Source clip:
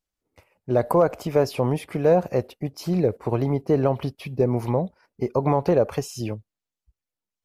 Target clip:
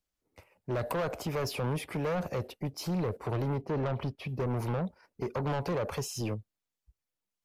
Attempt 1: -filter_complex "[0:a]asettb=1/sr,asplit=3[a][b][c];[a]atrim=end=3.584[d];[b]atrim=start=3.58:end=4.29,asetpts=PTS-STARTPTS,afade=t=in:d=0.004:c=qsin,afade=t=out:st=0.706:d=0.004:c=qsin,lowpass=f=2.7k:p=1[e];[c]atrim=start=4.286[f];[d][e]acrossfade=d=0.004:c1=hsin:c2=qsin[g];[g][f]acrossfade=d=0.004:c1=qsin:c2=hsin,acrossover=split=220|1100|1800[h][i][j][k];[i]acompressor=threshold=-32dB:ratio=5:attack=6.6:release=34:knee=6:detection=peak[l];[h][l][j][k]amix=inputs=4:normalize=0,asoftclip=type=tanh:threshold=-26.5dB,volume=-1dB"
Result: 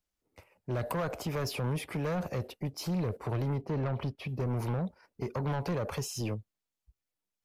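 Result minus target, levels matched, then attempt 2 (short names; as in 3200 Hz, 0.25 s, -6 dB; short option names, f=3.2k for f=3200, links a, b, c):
compressor: peak gain reduction +6 dB
-filter_complex "[0:a]asettb=1/sr,asplit=3[a][b][c];[a]atrim=end=3.584[d];[b]atrim=start=3.58:end=4.29,asetpts=PTS-STARTPTS,afade=t=in:d=0.004:c=qsin,afade=t=out:st=0.706:d=0.004:c=qsin,lowpass=f=2.7k:p=1[e];[c]atrim=start=4.286[f];[d][e]acrossfade=d=0.004:c1=hsin:c2=qsin[g];[g][f]acrossfade=d=0.004:c1=qsin:c2=hsin,acrossover=split=220|1100|1800[h][i][j][k];[i]acompressor=threshold=-24.5dB:ratio=5:attack=6.6:release=34:knee=6:detection=peak[l];[h][l][j][k]amix=inputs=4:normalize=0,asoftclip=type=tanh:threshold=-26.5dB,volume=-1dB"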